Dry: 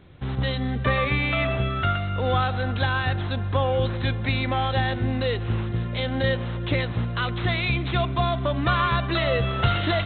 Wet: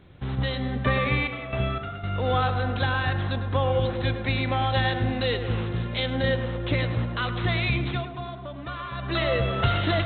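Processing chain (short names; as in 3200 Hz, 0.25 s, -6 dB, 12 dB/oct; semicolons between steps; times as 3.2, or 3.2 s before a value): 1.15–2.2 step gate "xxx...xxx..." 177 bpm -12 dB; 4.74–6.06 high shelf 2400 Hz +6.5 dB; 7.83–9.18 dip -11.5 dB, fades 0.24 s; tape echo 0.104 s, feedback 76%, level -7.5 dB, low-pass 1600 Hz; gain -1.5 dB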